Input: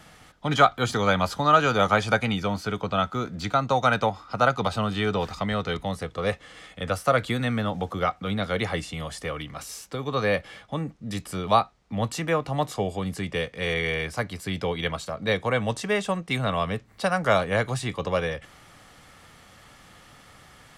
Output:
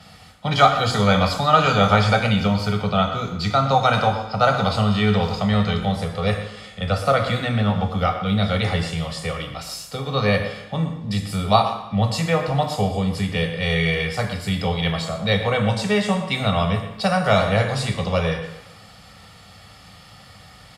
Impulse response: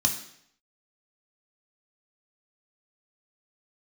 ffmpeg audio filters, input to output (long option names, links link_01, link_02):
-filter_complex "[0:a]asettb=1/sr,asplit=3[link_01][link_02][link_03];[link_01]atrim=end=6.844[link_04];[link_02]atrim=start=6.84:end=7.97,asetpts=PTS-STARTPTS,afade=type=in:duration=0.004:curve=qsin,afade=type=out:start_time=1.126:duration=0.004:curve=qsin,highshelf=frequency=11000:gain=-10[link_05];[link_03]atrim=start=7.966[link_06];[link_04][link_05]acrossfade=duration=0.004:curve1=hsin:curve2=qsin[link_07];[link_07][link_06]acrossfade=duration=0.004:curve1=qsin:curve2=hsin,asplit=2[link_08][link_09];[link_09]adelay=120,highpass=300,lowpass=3400,asoftclip=type=hard:threshold=-13dB,volume=-11dB[link_10];[link_08][link_10]amix=inputs=2:normalize=0[link_11];[1:a]atrim=start_sample=2205,asetrate=33075,aresample=44100[link_12];[link_11][link_12]afir=irnorm=-1:irlink=0,volume=-8dB"